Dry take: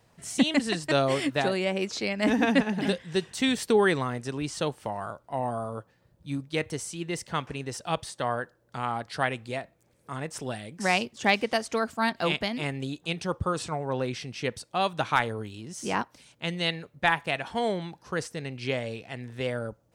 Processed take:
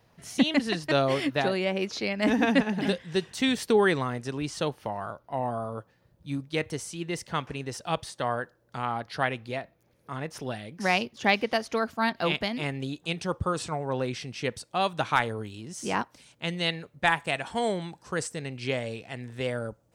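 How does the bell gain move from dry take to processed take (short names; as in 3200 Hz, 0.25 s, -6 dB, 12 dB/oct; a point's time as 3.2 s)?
bell 8000 Hz 0.36 oct
-12.5 dB
from 2.22 s -4.5 dB
from 4.7 s -14.5 dB
from 5.78 s -4 dB
from 8.82 s -14 dB
from 12.35 s -5.5 dB
from 12.99 s +0.5 dB
from 17.04 s +10 dB
from 18.37 s +3.5 dB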